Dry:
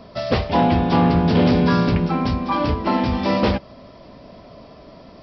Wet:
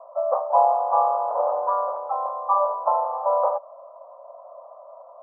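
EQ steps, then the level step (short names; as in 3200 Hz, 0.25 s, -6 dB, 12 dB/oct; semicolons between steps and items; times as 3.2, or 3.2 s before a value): Chebyshev band-pass 540–1200 Hz, order 4; +3.0 dB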